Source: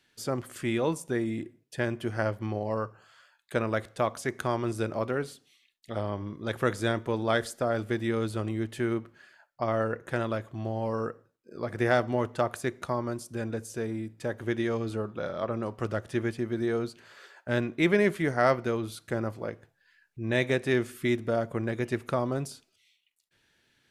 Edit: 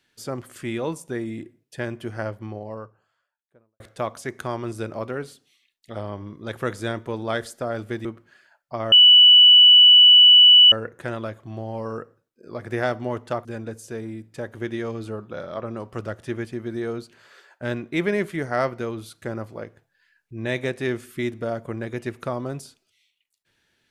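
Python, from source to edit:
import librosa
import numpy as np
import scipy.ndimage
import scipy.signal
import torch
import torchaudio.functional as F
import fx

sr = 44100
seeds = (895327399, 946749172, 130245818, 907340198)

y = fx.studio_fade_out(x, sr, start_s=1.95, length_s=1.85)
y = fx.edit(y, sr, fx.cut(start_s=8.05, length_s=0.88),
    fx.insert_tone(at_s=9.8, length_s=1.8, hz=2960.0, db=-7.5),
    fx.cut(start_s=12.53, length_s=0.78), tone=tone)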